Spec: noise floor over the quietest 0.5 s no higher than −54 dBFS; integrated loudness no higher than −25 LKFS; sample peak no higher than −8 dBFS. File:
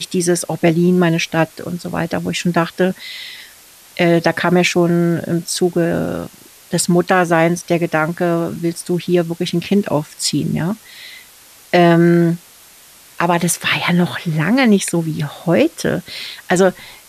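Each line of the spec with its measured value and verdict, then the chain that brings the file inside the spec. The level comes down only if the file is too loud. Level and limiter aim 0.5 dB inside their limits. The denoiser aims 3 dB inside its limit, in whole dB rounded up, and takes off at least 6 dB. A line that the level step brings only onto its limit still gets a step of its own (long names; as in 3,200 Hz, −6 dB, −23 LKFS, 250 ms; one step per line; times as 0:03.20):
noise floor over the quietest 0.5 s −44 dBFS: out of spec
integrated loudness −16.5 LKFS: out of spec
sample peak −2.5 dBFS: out of spec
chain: broadband denoise 6 dB, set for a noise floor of −44 dBFS
level −9 dB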